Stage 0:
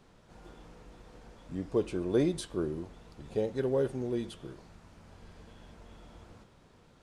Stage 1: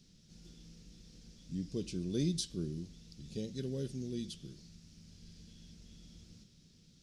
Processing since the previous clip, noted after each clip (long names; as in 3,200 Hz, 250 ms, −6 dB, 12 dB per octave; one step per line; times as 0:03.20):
drawn EQ curve 120 Hz 0 dB, 170 Hz +7 dB, 930 Hz −23 dB, 5,500 Hz +14 dB, 8,300 Hz +3 dB
level −4 dB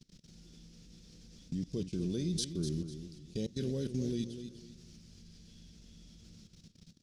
output level in coarse steps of 21 dB
feedback echo with a swinging delay time 248 ms, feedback 31%, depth 61 cents, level −9.5 dB
level +7.5 dB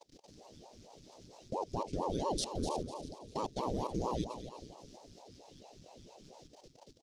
repeating echo 322 ms, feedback 33%, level −14.5 dB
ring modulator whose carrier an LFO sweeps 410 Hz, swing 85%, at 4.4 Hz
level +2 dB